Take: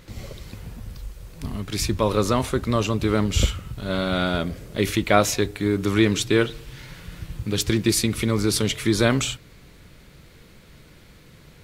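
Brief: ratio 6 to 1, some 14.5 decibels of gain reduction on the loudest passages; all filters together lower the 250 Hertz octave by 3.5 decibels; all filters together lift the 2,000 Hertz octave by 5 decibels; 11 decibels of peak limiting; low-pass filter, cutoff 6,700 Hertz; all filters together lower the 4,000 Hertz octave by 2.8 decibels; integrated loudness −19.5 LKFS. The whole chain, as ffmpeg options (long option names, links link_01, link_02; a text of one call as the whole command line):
ffmpeg -i in.wav -af "lowpass=6700,equalizer=frequency=250:width_type=o:gain=-5,equalizer=frequency=2000:width_type=o:gain=8,equalizer=frequency=4000:width_type=o:gain=-6,acompressor=threshold=-28dB:ratio=6,volume=17dB,alimiter=limit=-7.5dB:level=0:latency=1" out.wav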